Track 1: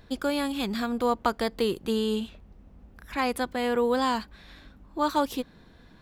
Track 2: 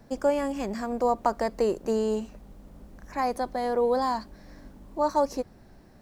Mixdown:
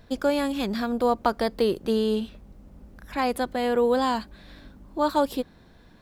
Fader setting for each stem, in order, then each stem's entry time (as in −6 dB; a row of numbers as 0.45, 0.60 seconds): −1.0, −5.5 decibels; 0.00, 0.00 seconds